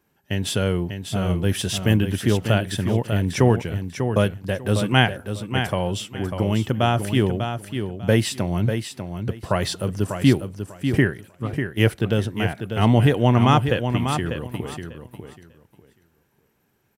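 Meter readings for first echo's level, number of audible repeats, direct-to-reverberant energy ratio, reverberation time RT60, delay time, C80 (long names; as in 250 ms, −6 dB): −7.5 dB, 2, no reverb audible, no reverb audible, 595 ms, no reverb audible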